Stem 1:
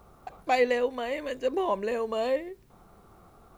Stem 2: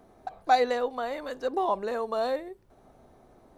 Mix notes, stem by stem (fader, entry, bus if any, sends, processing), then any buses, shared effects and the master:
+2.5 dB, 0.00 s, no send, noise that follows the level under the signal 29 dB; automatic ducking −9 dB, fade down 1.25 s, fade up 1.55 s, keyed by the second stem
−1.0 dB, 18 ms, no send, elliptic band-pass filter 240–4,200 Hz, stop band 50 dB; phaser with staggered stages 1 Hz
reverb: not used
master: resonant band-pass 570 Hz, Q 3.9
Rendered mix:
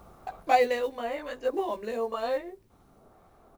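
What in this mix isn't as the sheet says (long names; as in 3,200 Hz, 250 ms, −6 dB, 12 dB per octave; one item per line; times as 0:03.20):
stem 2: missing elliptic band-pass filter 240–4,200 Hz, stop band 50 dB
master: missing resonant band-pass 570 Hz, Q 3.9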